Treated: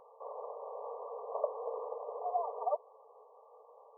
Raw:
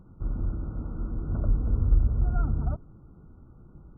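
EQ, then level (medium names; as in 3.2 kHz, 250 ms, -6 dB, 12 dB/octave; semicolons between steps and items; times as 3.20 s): brick-wall FIR band-pass 430–1200 Hz; +11.0 dB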